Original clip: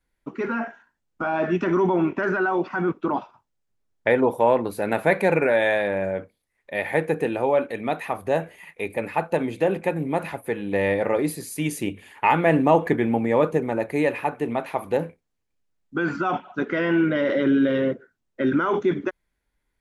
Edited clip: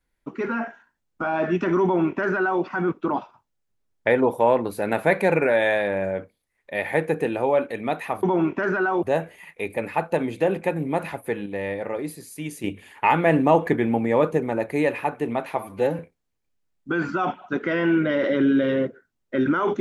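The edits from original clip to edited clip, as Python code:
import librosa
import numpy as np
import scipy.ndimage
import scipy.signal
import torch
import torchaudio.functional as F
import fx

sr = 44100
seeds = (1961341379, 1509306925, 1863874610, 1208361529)

y = fx.edit(x, sr, fx.duplicate(start_s=1.83, length_s=0.8, to_s=8.23),
    fx.clip_gain(start_s=10.66, length_s=1.18, db=-6.5),
    fx.stretch_span(start_s=14.77, length_s=0.28, factor=1.5), tone=tone)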